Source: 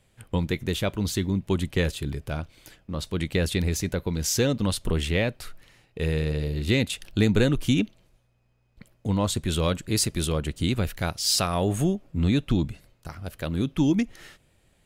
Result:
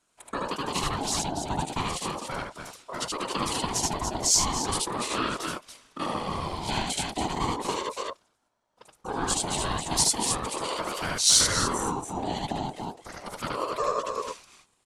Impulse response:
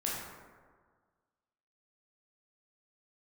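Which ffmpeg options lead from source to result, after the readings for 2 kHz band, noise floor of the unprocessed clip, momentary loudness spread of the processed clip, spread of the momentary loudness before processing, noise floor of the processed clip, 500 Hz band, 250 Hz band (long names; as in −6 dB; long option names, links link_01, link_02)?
−1.5 dB, −65 dBFS, 15 LU, 11 LU, −71 dBFS, −4.5 dB, −9.0 dB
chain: -af "agate=range=-7dB:threshold=-60dB:ratio=16:detection=peak,highpass=56,tiltshelf=frequency=1100:gain=4,aecho=1:1:75.8|285.7:0.891|0.447,acompressor=threshold=-19dB:ratio=4,lowpass=frequency=9500:width=0.5412,lowpass=frequency=9500:width=1.3066,afftfilt=real='hypot(re,im)*cos(2*PI*random(0))':imag='hypot(re,im)*sin(2*PI*random(1))':win_size=512:overlap=0.75,bass=frequency=250:gain=-13,treble=frequency=4000:gain=13,acontrast=87,aeval=exprs='val(0)*sin(2*PI*660*n/s+660*0.25/0.36*sin(2*PI*0.36*n/s))':channel_layout=same"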